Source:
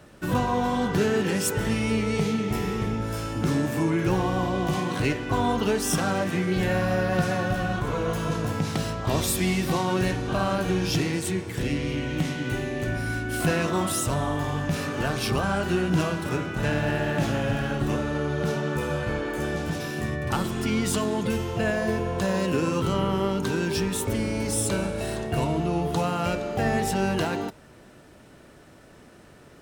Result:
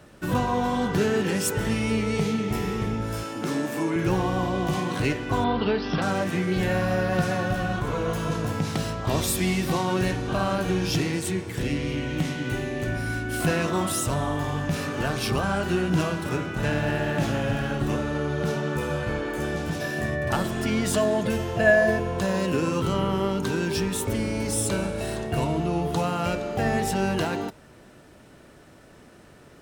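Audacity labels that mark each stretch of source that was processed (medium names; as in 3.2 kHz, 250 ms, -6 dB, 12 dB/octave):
3.230000	3.960000	high-pass 240 Hz
5.440000	6.020000	steep low-pass 4.9 kHz 72 dB/octave
19.810000	22.000000	small resonant body resonances 630/1700 Hz, height 12 dB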